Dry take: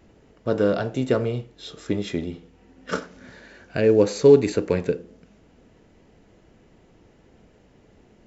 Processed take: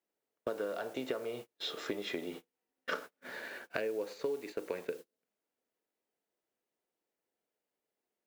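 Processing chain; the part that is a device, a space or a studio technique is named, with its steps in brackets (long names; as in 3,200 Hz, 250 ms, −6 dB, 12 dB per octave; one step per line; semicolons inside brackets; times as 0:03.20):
baby monitor (band-pass filter 450–4,100 Hz; downward compressor 12 to 1, threshold −38 dBFS, peak gain reduction 25.5 dB; white noise bed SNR 19 dB; noise gate −49 dBFS, range −35 dB)
level +4.5 dB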